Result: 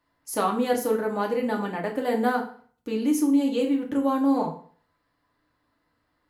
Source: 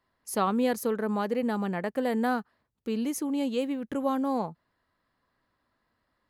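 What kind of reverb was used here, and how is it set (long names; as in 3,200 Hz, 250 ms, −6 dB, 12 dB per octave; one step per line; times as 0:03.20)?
feedback delay network reverb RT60 0.47 s, low-frequency decay 1×, high-frequency decay 0.85×, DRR −0.5 dB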